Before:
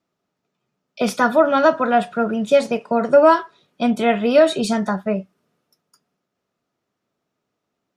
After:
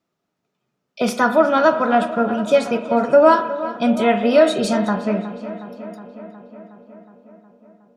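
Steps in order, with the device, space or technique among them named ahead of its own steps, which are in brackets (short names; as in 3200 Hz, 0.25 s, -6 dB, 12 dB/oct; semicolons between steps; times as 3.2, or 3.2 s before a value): dub delay into a spring reverb (darkening echo 0.365 s, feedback 70%, low-pass 3700 Hz, level -14 dB; spring tank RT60 1 s, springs 38 ms, chirp 25 ms, DRR 10 dB)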